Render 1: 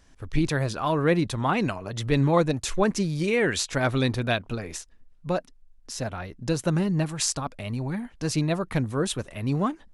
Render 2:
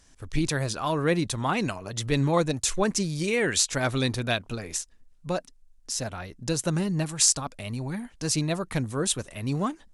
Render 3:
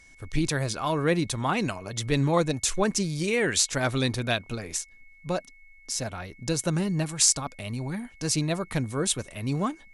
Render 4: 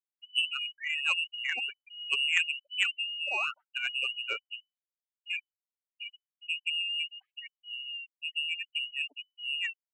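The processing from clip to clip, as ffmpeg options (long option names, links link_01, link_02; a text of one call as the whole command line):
ffmpeg -i in.wav -af "equalizer=frequency=8200:width_type=o:width=1.8:gain=10,volume=-2.5dB" out.wav
ffmpeg -i in.wav -af "aeval=exprs='val(0)+0.00224*sin(2*PI*2200*n/s)':channel_layout=same" out.wav
ffmpeg -i in.wav -af "afftfilt=real='re*gte(hypot(re,im),0.141)':imag='im*gte(hypot(re,im),0.141)':win_size=1024:overlap=0.75,lowpass=frequency=2600:width_type=q:width=0.5098,lowpass=frequency=2600:width_type=q:width=0.6013,lowpass=frequency=2600:width_type=q:width=0.9,lowpass=frequency=2600:width_type=q:width=2.563,afreqshift=-3000,aeval=exprs='0.355*(cos(1*acos(clip(val(0)/0.355,-1,1)))-cos(1*PI/2))+0.0631*(cos(3*acos(clip(val(0)/0.355,-1,1)))-cos(3*PI/2))':channel_layout=same" out.wav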